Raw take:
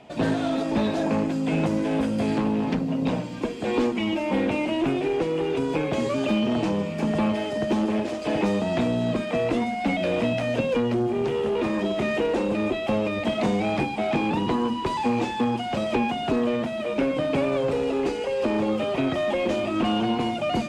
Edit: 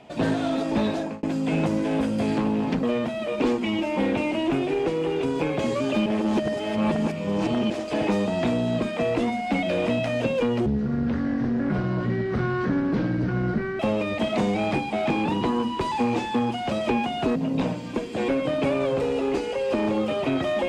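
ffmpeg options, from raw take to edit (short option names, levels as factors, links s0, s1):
-filter_complex "[0:a]asplit=10[s0][s1][s2][s3][s4][s5][s6][s7][s8][s9];[s0]atrim=end=1.23,asetpts=PTS-STARTPTS,afade=t=out:st=0.91:d=0.32[s10];[s1]atrim=start=1.23:end=2.832,asetpts=PTS-STARTPTS,afade=t=in:d=0.004:c=hsin[s11];[s2]atrim=start=16.408:end=17.002[s12];[s3]atrim=start=3.758:end=6.402[s13];[s4]atrim=start=6.398:end=8.042,asetpts=PTS-STARTPTS,areverse[s14];[s5]atrim=start=8.038:end=11.004[s15];[s6]atrim=start=11:end=12.85,asetpts=PTS-STARTPTS,asetrate=26019,aresample=44100[s16];[s7]atrim=start=12.846:end=16.412[s17];[s8]atrim=start=2.828:end=3.762[s18];[s9]atrim=start=16.998[s19];[s10][s11]concat=n=2:v=0:a=1[s20];[s20][s12]acrossfade=d=0.004:c1=hsin:c2=hsin[s21];[s21][s13]acrossfade=d=0.004:c1=hsin:c2=hsin[s22];[s22][s14]acrossfade=d=0.004:c1=hsin:c2=hsin[s23];[s23][s15]acrossfade=d=0.004:c1=hsin:c2=hsin[s24];[s24][s16]acrossfade=d=0.004:c1=hsin:c2=hsin[s25];[s25][s17]acrossfade=d=0.004:c1=hsin:c2=hsin[s26];[s26][s18]acrossfade=d=0.004:c1=hsin:c2=hsin[s27];[s27][s19]acrossfade=d=0.004:c1=hsin:c2=hsin"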